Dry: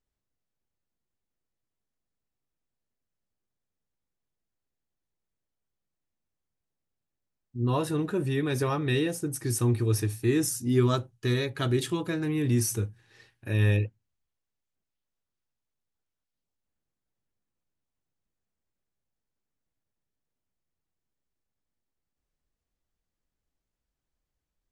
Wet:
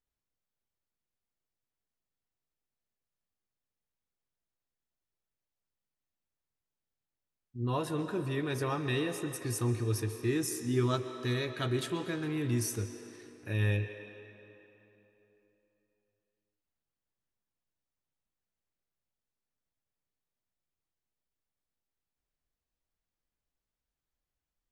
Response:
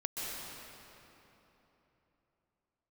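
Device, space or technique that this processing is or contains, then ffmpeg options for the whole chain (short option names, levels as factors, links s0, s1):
filtered reverb send: -filter_complex "[0:a]asplit=2[s0][s1];[s1]highpass=400,lowpass=6300[s2];[1:a]atrim=start_sample=2205[s3];[s2][s3]afir=irnorm=-1:irlink=0,volume=0.376[s4];[s0][s4]amix=inputs=2:normalize=0,volume=0.501"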